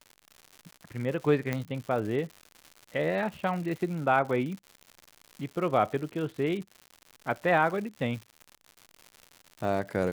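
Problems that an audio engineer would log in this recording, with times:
crackle 170 per s -37 dBFS
1.53 s: pop -16 dBFS

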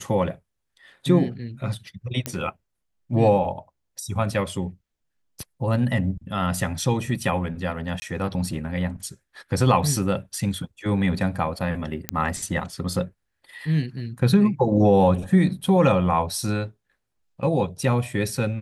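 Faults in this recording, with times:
2.26 s: pop -10 dBFS
8.00–8.02 s: dropout 20 ms
12.09 s: pop -6 dBFS

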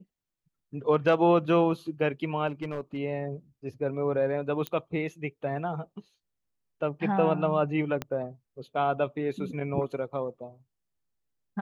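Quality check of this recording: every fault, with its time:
2.47–2.98 s: clipped -27.5 dBFS
4.67 s: pop -16 dBFS
8.02 s: pop -17 dBFS

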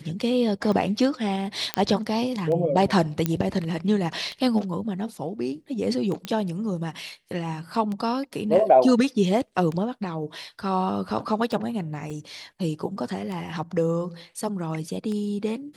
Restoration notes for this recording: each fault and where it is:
tick 33 1/3 rpm -20 dBFS
1.74 s: pop -7 dBFS
3.26 s: pop -9 dBFS
6.25 s: pop -16 dBFS
12.10–12.11 s: dropout 5 ms

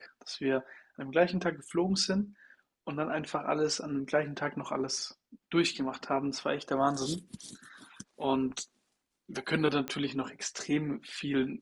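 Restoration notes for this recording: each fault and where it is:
9.88 s: pop -19 dBFS

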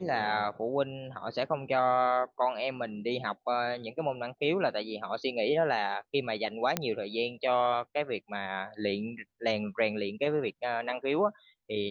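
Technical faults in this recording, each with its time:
6.77 s: pop -11 dBFS

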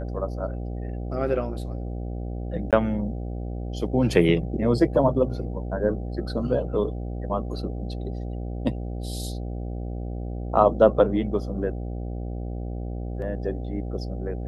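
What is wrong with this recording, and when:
buzz 60 Hz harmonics 13 -31 dBFS
2.71–2.73 s: dropout 17 ms

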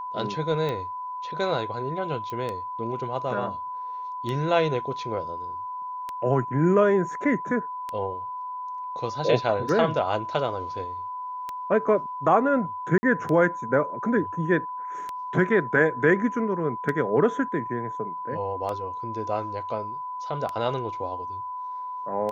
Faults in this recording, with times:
tick 33 1/3 rpm -18 dBFS
whine 1 kHz -31 dBFS
2.30 s: pop -21 dBFS
12.98–13.03 s: dropout 50 ms

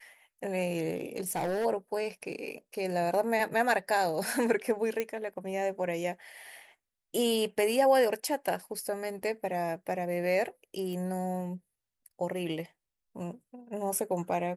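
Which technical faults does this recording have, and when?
0.95–1.66 s: clipped -27.5 dBFS
5.00 s: pop -17 dBFS
10.93 s: pop

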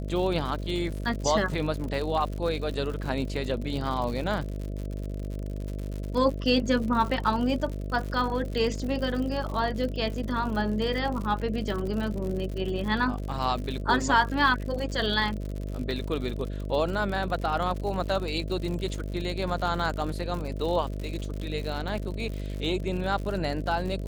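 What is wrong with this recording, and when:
buzz 50 Hz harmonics 13 -33 dBFS
crackle 86 per s -33 dBFS

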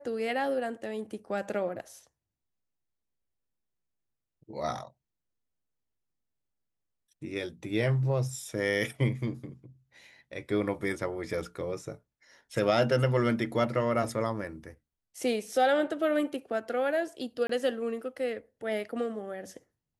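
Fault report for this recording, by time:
17.47–17.49 s: dropout 24 ms

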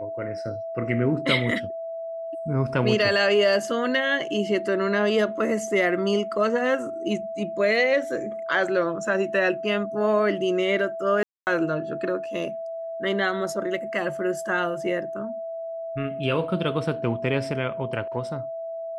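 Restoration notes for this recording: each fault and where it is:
whine 660 Hz -30 dBFS
11.23–11.47 s: dropout 239 ms

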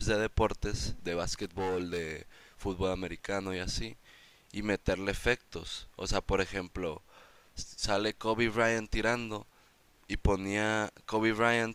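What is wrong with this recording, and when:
1.33–2.17 s: clipped -29 dBFS

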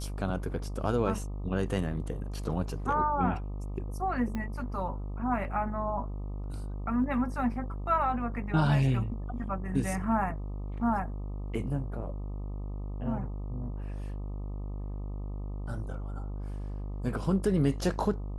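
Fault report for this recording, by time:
buzz 50 Hz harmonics 25 -36 dBFS
4.35 s: pop -22 dBFS

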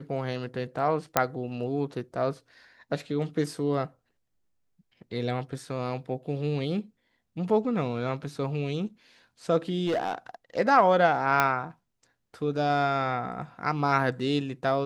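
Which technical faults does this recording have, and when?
1.17 s: pop -5 dBFS
9.86–10.15 s: clipped -23 dBFS
11.40 s: pop -8 dBFS

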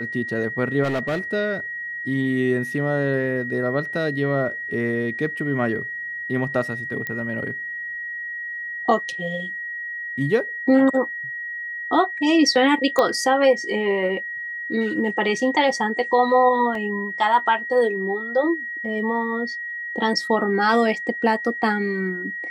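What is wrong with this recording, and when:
whine 1.9 kHz -28 dBFS
0.83–1.20 s: clipped -20 dBFS
7.07 s: pop -15 dBFS
12.99 s: pop -7 dBFS
16.75 s: dropout 2.8 ms

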